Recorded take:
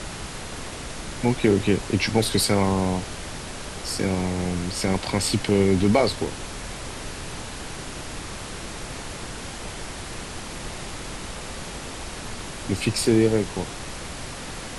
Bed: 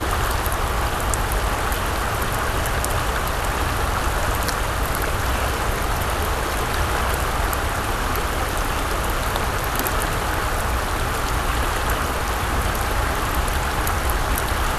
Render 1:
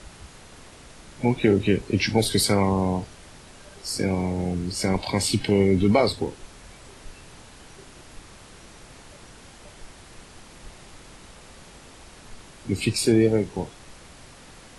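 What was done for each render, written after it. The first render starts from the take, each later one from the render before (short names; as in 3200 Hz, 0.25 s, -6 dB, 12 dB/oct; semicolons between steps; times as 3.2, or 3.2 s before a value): noise print and reduce 12 dB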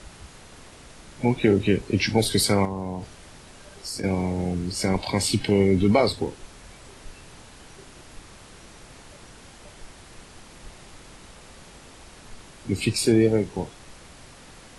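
2.65–4.04 compressor 2.5:1, threshold -30 dBFS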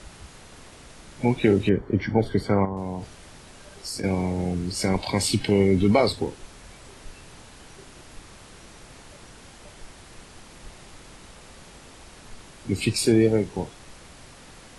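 1.69–2.77 polynomial smoothing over 41 samples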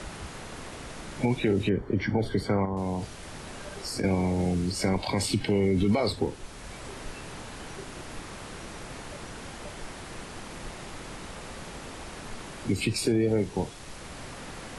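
limiter -14 dBFS, peak gain reduction 8.5 dB; three-band squash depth 40%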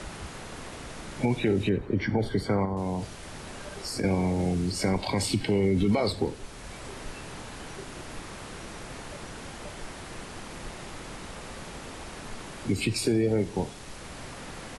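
feedback echo 92 ms, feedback 53%, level -21 dB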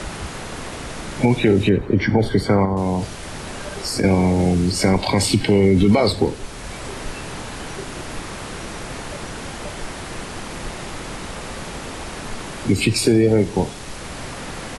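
gain +9.5 dB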